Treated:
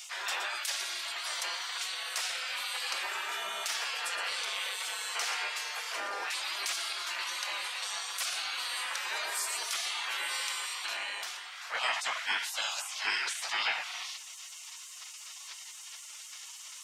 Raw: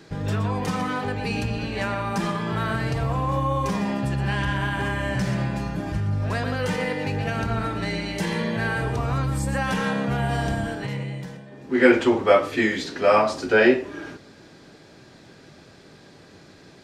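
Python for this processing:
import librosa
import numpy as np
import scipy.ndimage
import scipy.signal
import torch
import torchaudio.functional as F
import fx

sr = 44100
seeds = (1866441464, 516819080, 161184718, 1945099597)

y = fx.spec_gate(x, sr, threshold_db=-25, keep='weak')
y = scipy.signal.sosfilt(scipy.signal.butter(2, 730.0, 'highpass', fs=sr, output='sos'), y)
y = fx.env_flatten(y, sr, amount_pct=50)
y = y * librosa.db_to_amplitude(1.5)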